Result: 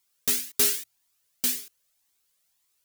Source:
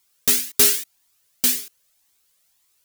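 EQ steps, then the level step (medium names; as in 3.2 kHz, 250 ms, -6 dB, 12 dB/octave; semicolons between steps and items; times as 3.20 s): hum notches 60/120 Hz; -7.0 dB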